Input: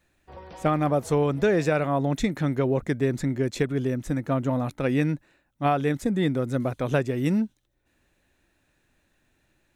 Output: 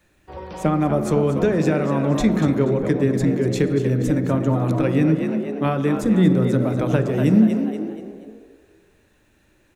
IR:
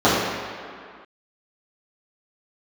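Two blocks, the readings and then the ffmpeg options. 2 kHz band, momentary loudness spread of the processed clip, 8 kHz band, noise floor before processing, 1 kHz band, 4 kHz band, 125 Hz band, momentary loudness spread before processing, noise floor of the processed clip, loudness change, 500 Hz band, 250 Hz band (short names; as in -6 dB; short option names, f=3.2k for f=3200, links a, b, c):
+1.0 dB, 8 LU, +4.0 dB, -70 dBFS, +1.0 dB, +2.5 dB, +6.5 dB, 5 LU, -60 dBFS, +6.0 dB, +4.5 dB, +8.0 dB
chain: -filter_complex "[0:a]bandreject=f=710:w=12,asplit=5[a][b][c][d][e];[b]adelay=239,afreqshift=61,volume=-10dB[f];[c]adelay=478,afreqshift=122,volume=-18dB[g];[d]adelay=717,afreqshift=183,volume=-25.9dB[h];[e]adelay=956,afreqshift=244,volume=-33.9dB[i];[a][f][g][h][i]amix=inputs=5:normalize=0,acrossover=split=210[j][k];[k]acompressor=threshold=-30dB:ratio=3[l];[j][l]amix=inputs=2:normalize=0,asplit=2[m][n];[n]lowshelf=f=150:g=11.5[o];[1:a]atrim=start_sample=2205[p];[o][p]afir=irnorm=-1:irlink=0,volume=-32.5dB[q];[m][q]amix=inputs=2:normalize=0,volume=6.5dB"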